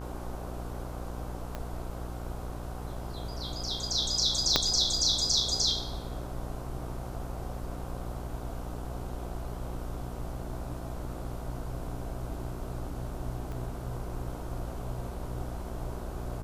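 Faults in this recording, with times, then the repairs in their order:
buzz 60 Hz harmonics 26 -39 dBFS
1.55 pop -21 dBFS
4.56 pop -6 dBFS
13.52 pop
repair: de-click; de-hum 60 Hz, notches 26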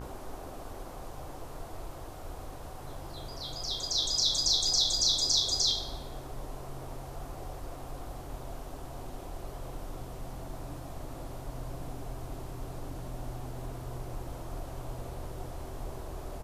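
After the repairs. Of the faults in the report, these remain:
1.55 pop
4.56 pop
13.52 pop

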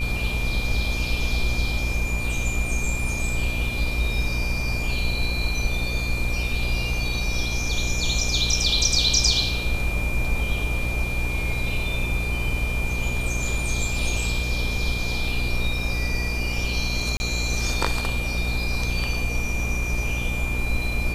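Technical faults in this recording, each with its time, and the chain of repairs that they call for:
buzz 60 Hz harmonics 22 -28 dBFS
tone 2400 Hz -29 dBFS
17.17–17.2 gap 30 ms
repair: notch 2400 Hz, Q 30; de-hum 60 Hz, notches 22; interpolate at 17.17, 30 ms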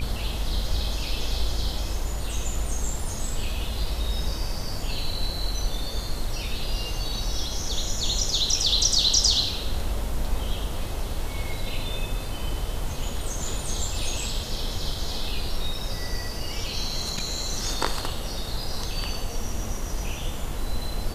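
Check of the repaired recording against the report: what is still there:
none

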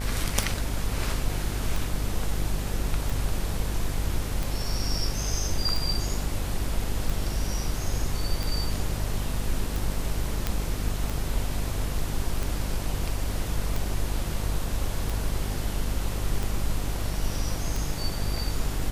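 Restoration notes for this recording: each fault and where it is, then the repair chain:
buzz 50 Hz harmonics 30 -31 dBFS
tick 45 rpm
10.47 pop -11 dBFS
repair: de-click; de-hum 50 Hz, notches 30

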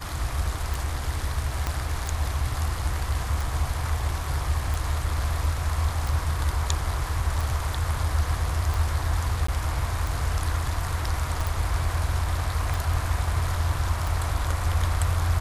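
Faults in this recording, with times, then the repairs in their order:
tick 45 rpm
1.67 pop -12 dBFS
9.47–9.48 gap 14 ms
11.47 pop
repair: de-click; interpolate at 9.47, 14 ms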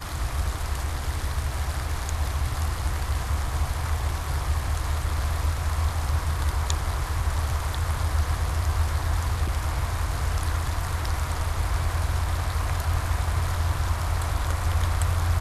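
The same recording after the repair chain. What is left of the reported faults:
1.67 pop

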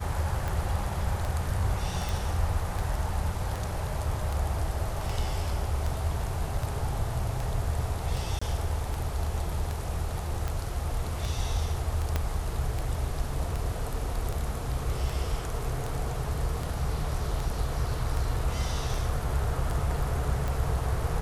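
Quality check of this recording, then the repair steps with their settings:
tick 78 rpm
2.09 pop
8.39–8.41 gap 25 ms
12.16 pop -13 dBFS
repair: de-click; interpolate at 8.39, 25 ms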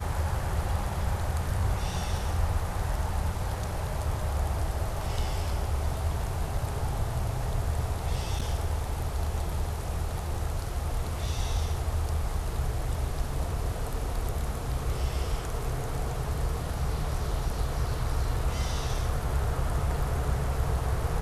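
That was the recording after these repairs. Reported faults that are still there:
12.16 pop

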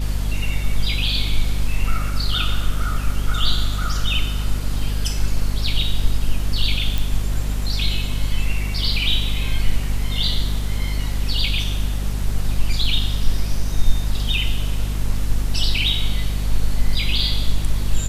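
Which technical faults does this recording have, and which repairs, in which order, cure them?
hum 50 Hz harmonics 5 -23 dBFS
6.98 pop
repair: de-click; de-hum 50 Hz, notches 5

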